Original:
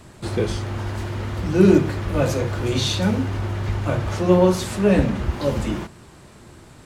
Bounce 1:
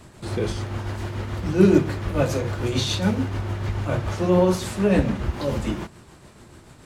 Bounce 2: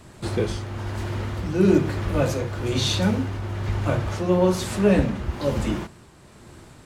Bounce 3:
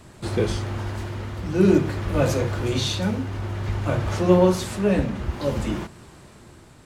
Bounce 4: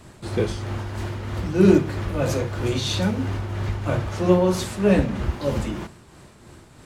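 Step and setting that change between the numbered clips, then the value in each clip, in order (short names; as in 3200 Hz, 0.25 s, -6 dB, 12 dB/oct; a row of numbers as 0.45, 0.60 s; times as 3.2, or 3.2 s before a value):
tremolo, rate: 6.9, 1.1, 0.54, 3.1 Hz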